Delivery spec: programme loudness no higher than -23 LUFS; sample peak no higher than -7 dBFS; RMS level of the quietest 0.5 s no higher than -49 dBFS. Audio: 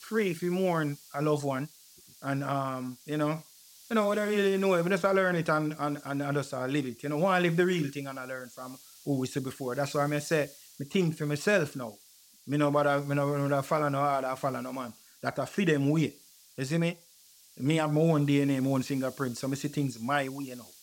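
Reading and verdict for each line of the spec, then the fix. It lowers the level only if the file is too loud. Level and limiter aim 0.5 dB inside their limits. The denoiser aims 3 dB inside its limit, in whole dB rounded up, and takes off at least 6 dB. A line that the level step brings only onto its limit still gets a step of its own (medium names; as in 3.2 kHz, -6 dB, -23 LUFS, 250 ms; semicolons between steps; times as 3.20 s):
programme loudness -29.5 LUFS: pass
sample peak -12.0 dBFS: pass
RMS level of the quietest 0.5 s -58 dBFS: pass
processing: none needed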